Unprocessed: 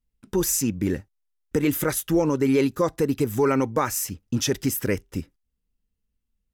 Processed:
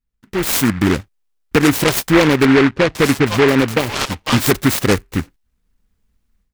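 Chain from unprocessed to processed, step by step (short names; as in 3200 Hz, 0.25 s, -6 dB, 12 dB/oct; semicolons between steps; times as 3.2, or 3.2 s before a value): AGC gain up to 15 dB; 2.45–4.51 bands offset in time lows, highs 0.5 s, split 850 Hz; noise-modulated delay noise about 1500 Hz, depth 0.18 ms; gain -1 dB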